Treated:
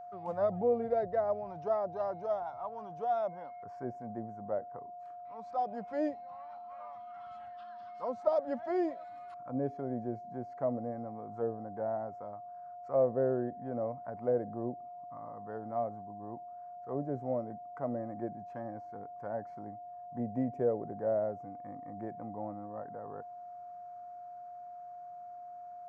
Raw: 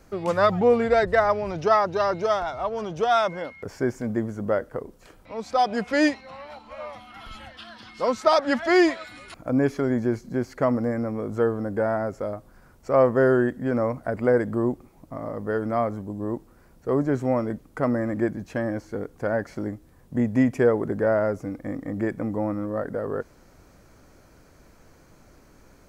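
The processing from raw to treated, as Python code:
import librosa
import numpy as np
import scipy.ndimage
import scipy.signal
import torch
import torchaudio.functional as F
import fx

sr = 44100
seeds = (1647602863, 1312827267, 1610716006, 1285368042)

y = scipy.signal.sosfilt(scipy.signal.butter(2, 110.0, 'highpass', fs=sr, output='sos'), x)
y = fx.low_shelf(y, sr, hz=160.0, db=12.0)
y = fx.auto_wah(y, sr, base_hz=590.0, top_hz=1200.0, q=2.9, full_db=-15.5, direction='down')
y = fx.bass_treble(y, sr, bass_db=15, treble_db=8)
y = y + 10.0 ** (-35.0 / 20.0) * np.sin(2.0 * np.pi * 710.0 * np.arange(len(y)) / sr)
y = y * librosa.db_to_amplitude(-9.0)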